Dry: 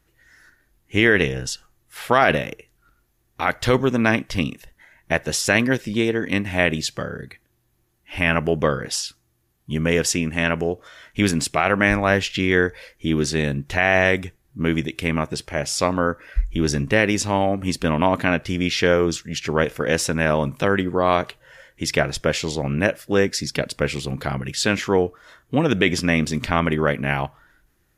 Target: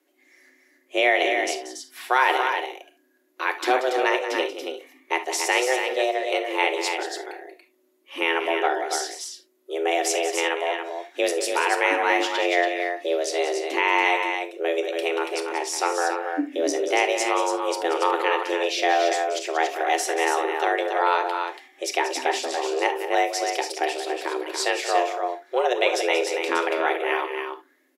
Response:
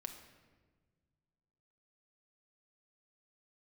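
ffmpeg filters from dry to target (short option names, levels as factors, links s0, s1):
-filter_complex "[0:a]aecho=1:1:183.7|282.8:0.282|0.501,afreqshift=250[s0];[1:a]atrim=start_sample=2205,atrim=end_sample=3528[s1];[s0][s1]afir=irnorm=-1:irlink=0"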